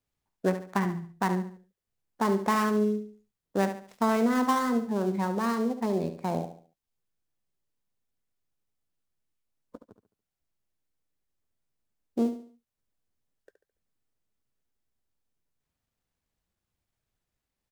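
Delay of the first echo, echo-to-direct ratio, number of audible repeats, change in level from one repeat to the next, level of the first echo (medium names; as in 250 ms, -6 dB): 71 ms, -9.5 dB, 3, -9.0 dB, -10.0 dB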